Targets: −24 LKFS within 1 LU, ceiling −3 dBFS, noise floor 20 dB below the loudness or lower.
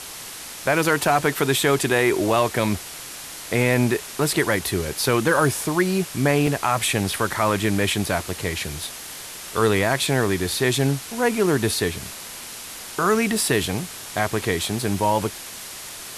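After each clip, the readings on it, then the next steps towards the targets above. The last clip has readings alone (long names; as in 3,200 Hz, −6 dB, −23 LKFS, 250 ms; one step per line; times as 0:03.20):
number of dropouts 2; longest dropout 1.2 ms; background noise floor −37 dBFS; target noise floor −42 dBFS; integrated loudness −21.5 LKFS; sample peak −6.0 dBFS; target loudness −24.0 LKFS
→ repair the gap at 0:06.47/0:14.83, 1.2 ms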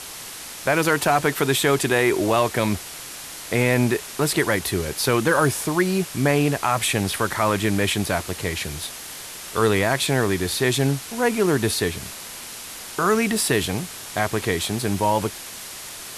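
number of dropouts 0; background noise floor −37 dBFS; target noise floor −42 dBFS
→ noise reduction from a noise print 6 dB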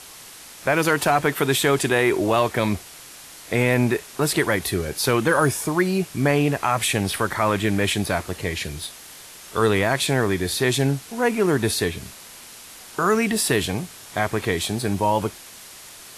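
background noise floor −43 dBFS; integrated loudness −22.0 LKFS; sample peak −6.0 dBFS; target loudness −24.0 LKFS
→ level −2 dB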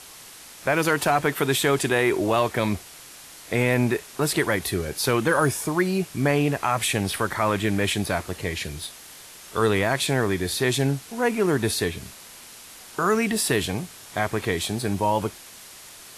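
integrated loudness −24.0 LKFS; sample peak −8.0 dBFS; background noise floor −45 dBFS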